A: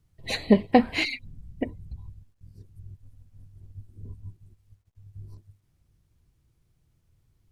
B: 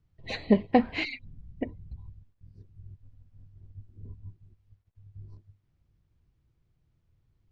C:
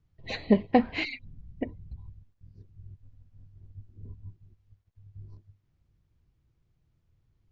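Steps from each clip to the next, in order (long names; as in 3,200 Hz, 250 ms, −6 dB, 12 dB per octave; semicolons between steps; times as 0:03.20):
high-frequency loss of the air 150 metres; level −3 dB
downsampling to 16,000 Hz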